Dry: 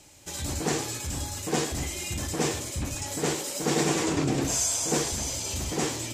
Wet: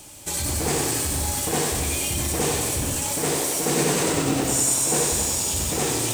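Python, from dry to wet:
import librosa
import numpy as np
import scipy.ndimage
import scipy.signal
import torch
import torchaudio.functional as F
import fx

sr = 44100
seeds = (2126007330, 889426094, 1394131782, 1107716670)

p1 = fx.high_shelf(x, sr, hz=9800.0, db=9.5)
p2 = fx.over_compress(p1, sr, threshold_db=-35.0, ratio=-1.0)
p3 = p1 + F.gain(torch.from_numpy(p2), -3.0).numpy()
p4 = fx.formant_shift(p3, sr, semitones=2)
p5 = p4 + fx.echo_multitap(p4, sr, ms=(66, 158), db=(-9.0, -18.0), dry=0)
y = fx.echo_crushed(p5, sr, ms=95, feedback_pct=80, bits=6, wet_db=-4.5)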